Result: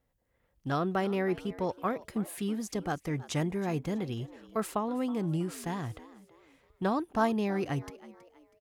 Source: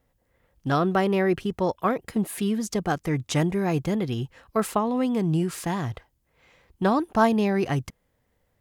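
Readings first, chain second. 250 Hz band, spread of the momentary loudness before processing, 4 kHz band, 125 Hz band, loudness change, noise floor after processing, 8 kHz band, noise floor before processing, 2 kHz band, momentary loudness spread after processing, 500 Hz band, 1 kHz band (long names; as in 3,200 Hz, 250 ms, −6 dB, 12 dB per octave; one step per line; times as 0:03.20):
−7.5 dB, 8 LU, −7.5 dB, −7.5 dB, −7.5 dB, −75 dBFS, −7.5 dB, −71 dBFS, −7.5 dB, 8 LU, −7.5 dB, −7.5 dB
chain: echo with shifted repeats 322 ms, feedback 35%, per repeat +79 Hz, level −18 dB
level −7.5 dB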